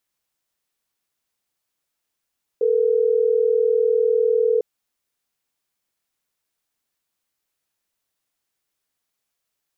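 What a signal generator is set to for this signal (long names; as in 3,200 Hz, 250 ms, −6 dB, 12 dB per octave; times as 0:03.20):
call progress tone ringback tone, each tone −18 dBFS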